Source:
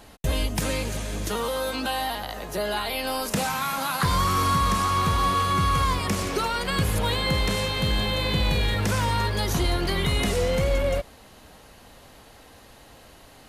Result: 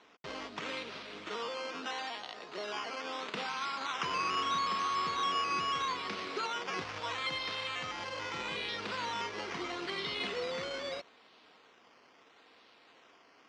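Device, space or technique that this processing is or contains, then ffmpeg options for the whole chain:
circuit-bent sampling toy: -filter_complex "[0:a]acrusher=samples=9:mix=1:aa=0.000001:lfo=1:lforange=5.4:lforate=0.77,highpass=420,equalizer=f=580:t=q:w=4:g=-8,equalizer=f=820:t=q:w=4:g=-6,equalizer=f=1.7k:t=q:w=4:g=-4,lowpass=f=5.2k:w=0.5412,lowpass=f=5.2k:w=1.3066,asettb=1/sr,asplit=3[a][b][c];[a]atrim=end=6.824[d];[b]atrim=start=6.82:end=8.38,asetpts=PTS-STARTPTS,afade=t=in:d=0.004:c=qsin,afade=t=out:st=1.556:d=0.004:c=qsin,equalizer=f=100:t=o:w=0.33:g=6,equalizer=f=200:t=o:w=0.33:g=-10,equalizer=f=400:t=o:w=0.33:g=-11[e];[c]atrim=start=8.376[f];[d][e]acrossfade=d=0.004:c1=hsin:c2=qsin[g];[g][f]acrossfade=d=0.004:c1=qsin:c2=hsin,volume=-6.5dB"

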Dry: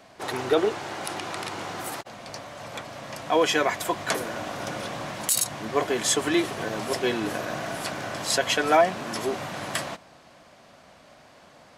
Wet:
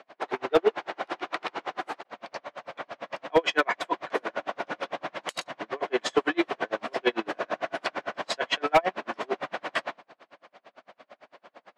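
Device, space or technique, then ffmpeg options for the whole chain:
helicopter radio: -af "highpass=350,lowpass=2.9k,aeval=exprs='val(0)*pow(10,-37*(0.5-0.5*cos(2*PI*8.9*n/s))/20)':c=same,asoftclip=type=hard:threshold=-19dB,volume=7dB"

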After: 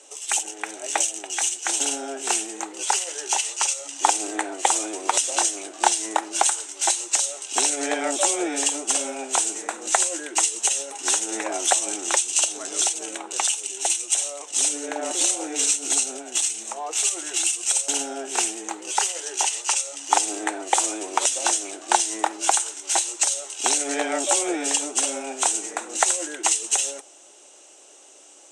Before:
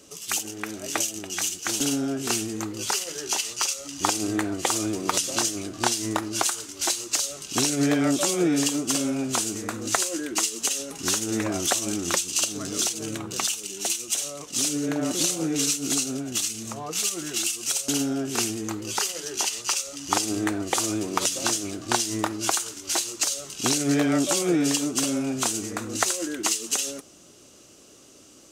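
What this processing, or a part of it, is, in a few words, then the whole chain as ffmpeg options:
phone speaker on a table: -af "highpass=f=410:w=0.5412,highpass=f=410:w=1.3066,equalizer=f=470:t=q:w=4:g=-4,equalizer=f=830:t=q:w=4:g=8,equalizer=f=1.2k:t=q:w=4:g=-6,equalizer=f=4.7k:t=q:w=4:g=-9,equalizer=f=8.3k:t=q:w=4:g=8,lowpass=f=8.9k:w=0.5412,lowpass=f=8.9k:w=1.3066,volume=3dB"

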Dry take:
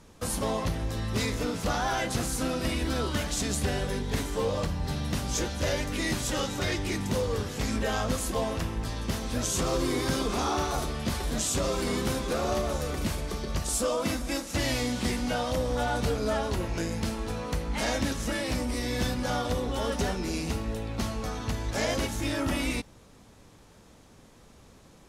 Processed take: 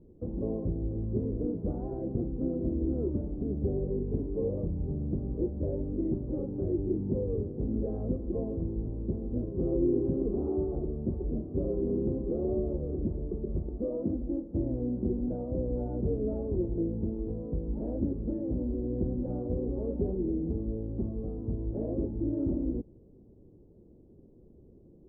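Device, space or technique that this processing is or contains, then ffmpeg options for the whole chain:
under water: -af "lowpass=f=470:w=0.5412,lowpass=f=470:w=1.3066,equalizer=f=360:t=o:w=0.37:g=8.5,volume=-1.5dB"

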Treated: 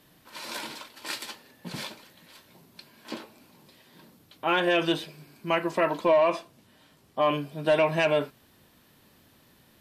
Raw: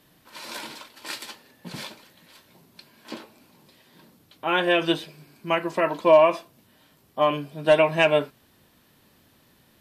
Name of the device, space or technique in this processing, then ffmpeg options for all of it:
soft clipper into limiter: -filter_complex "[0:a]asoftclip=type=tanh:threshold=-8.5dB,alimiter=limit=-14.5dB:level=0:latency=1:release=48,asettb=1/sr,asplit=3[a][b][c];[a]atrim=end=6.054[d];[b]atrim=start=6.05:end=7.23,asetpts=PTS-STARTPTS,afade=t=in:d=0.004:c=qsin,afade=t=out:st=1.176:d=0.004:c=qsin,lowpass=11k[e];[c]atrim=start=7.226[f];[d][e]acrossfade=d=0.004:c1=hsin:c2=qsin[g];[g][f]acrossfade=d=0.004:c1=qsin:c2=hsin"

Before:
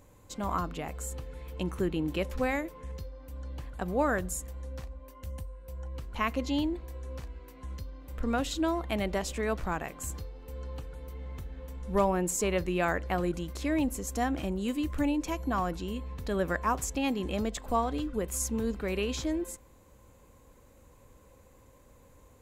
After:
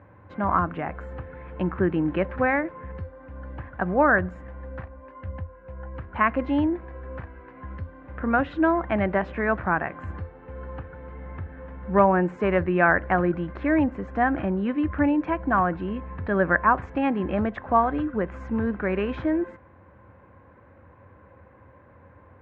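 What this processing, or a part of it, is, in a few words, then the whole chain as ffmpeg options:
bass cabinet: -af "highpass=f=83:w=0.5412,highpass=f=83:w=1.3066,equalizer=f=85:t=q:w=4:g=5,equalizer=f=140:t=q:w=4:g=-4,equalizer=f=250:t=q:w=4:g=-4,equalizer=f=450:t=q:w=4:g=-6,equalizer=f=1.6k:t=q:w=4:g=6,lowpass=f=2k:w=0.5412,lowpass=f=2k:w=1.3066,volume=9dB"

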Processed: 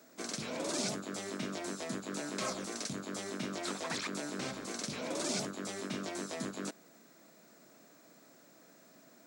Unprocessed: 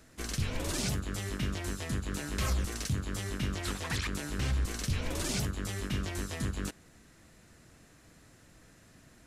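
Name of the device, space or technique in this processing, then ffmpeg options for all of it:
old television with a line whistle: -af "highpass=f=200:w=0.5412,highpass=f=200:w=1.3066,equalizer=f=630:t=q:w=4:g=6,equalizer=f=1.8k:t=q:w=4:g=-5,equalizer=f=2.9k:t=q:w=4:g=-7,lowpass=f=8.9k:w=0.5412,lowpass=f=8.9k:w=1.3066,aeval=exprs='val(0)+0.000562*sin(2*PI*15734*n/s)':c=same"

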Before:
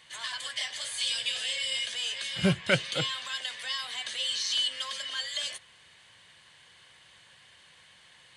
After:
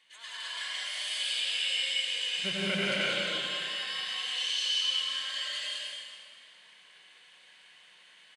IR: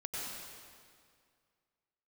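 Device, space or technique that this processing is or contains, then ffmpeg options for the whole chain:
stadium PA: -filter_complex "[0:a]highpass=f=200:w=0.5412,highpass=f=200:w=1.3066,equalizer=f=2.6k:t=o:w=1.1:g=6,aecho=1:1:172|207:0.708|0.891[a];[1:a]atrim=start_sample=2205[b];[a][b]afir=irnorm=-1:irlink=0,volume=-9dB"

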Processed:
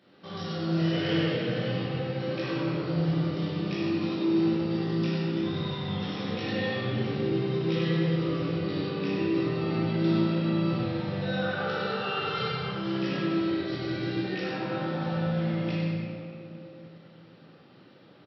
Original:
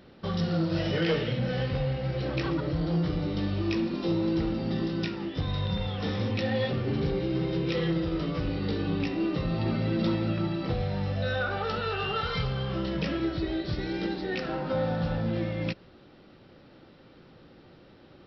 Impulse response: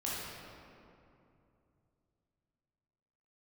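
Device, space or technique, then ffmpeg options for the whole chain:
PA in a hall: -filter_complex "[0:a]highpass=f=110:w=0.5412,highpass=f=110:w=1.3066,equalizer=f=3k:t=o:w=2.7:g=5,aecho=1:1:97:0.562[a];[1:a]atrim=start_sample=2205[b];[a][b]afir=irnorm=-1:irlink=0,highpass=77,volume=-8dB"

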